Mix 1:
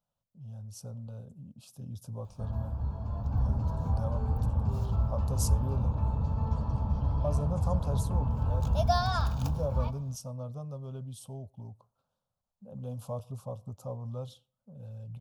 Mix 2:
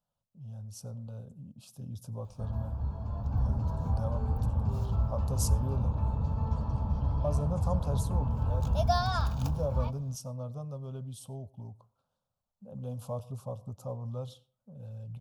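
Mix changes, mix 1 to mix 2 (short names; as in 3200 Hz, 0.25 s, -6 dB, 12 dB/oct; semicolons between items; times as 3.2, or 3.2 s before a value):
speech: send +7.0 dB; background: send -7.0 dB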